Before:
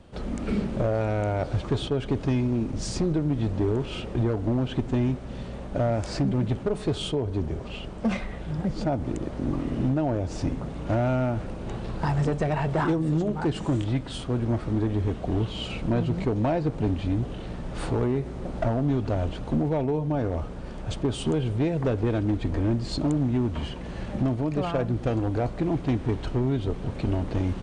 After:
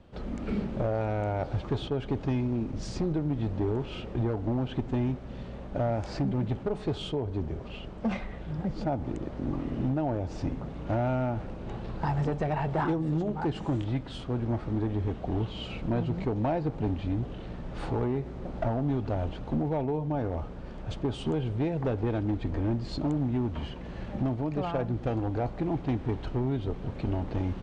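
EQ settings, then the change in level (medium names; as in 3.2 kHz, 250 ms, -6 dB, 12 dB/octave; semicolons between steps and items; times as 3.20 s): dynamic bell 820 Hz, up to +6 dB, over -47 dBFS, Q 5.5; distance through air 92 m; -4.0 dB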